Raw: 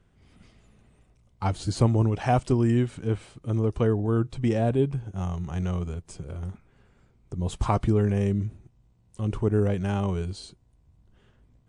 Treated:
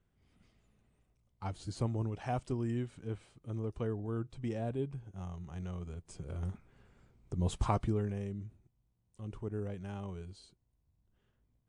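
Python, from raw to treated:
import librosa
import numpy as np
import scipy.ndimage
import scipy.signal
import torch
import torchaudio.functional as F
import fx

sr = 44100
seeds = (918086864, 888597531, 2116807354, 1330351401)

y = fx.gain(x, sr, db=fx.line((5.77, -13.0), (6.43, -3.5), (7.47, -3.5), (8.29, -15.5)))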